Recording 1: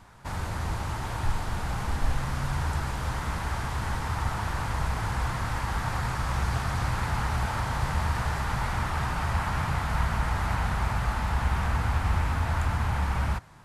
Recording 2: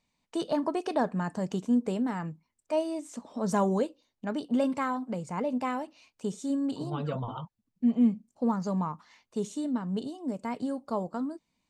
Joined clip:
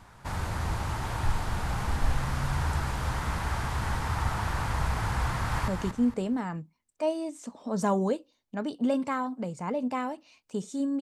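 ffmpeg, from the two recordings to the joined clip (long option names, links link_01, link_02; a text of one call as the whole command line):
ffmpeg -i cue0.wav -i cue1.wav -filter_complex "[0:a]apad=whole_dur=11.01,atrim=end=11.01,atrim=end=5.682[link_01];[1:a]atrim=start=1.378:end=6.71[link_02];[link_01][link_02]acrossfade=duration=0.004:curve1=hsin:curve2=hsin,asplit=2[link_03][link_04];[link_04]afade=type=in:start_time=5.28:duration=0.01,afade=type=out:start_time=5.68:duration=0.01,aecho=0:1:230|460|690|920:0.473151|0.141945|0.0425836|0.0127751[link_05];[link_03][link_05]amix=inputs=2:normalize=0" out.wav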